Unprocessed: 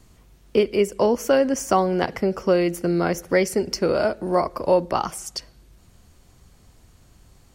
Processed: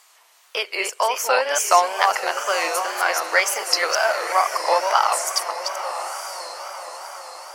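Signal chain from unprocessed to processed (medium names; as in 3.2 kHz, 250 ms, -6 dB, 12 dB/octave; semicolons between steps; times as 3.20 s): chunks repeated in reverse 240 ms, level -5.5 dB; high-pass 790 Hz 24 dB/octave; echo that smears into a reverb 967 ms, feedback 51%, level -9.5 dB; wow and flutter 110 cents; trim +8 dB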